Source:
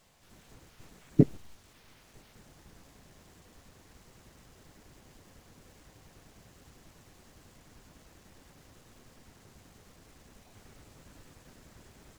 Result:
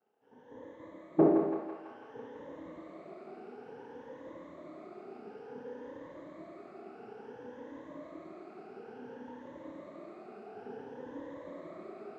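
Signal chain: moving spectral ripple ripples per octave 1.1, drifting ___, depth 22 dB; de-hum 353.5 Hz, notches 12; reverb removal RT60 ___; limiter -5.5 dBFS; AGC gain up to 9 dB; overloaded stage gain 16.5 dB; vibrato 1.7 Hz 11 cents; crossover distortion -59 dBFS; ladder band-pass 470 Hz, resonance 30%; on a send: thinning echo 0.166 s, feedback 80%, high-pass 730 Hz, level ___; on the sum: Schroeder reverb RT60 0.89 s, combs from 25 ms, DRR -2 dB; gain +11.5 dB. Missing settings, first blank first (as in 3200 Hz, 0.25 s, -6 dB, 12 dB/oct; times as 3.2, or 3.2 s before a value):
+0.57 Hz, 0.85 s, -3.5 dB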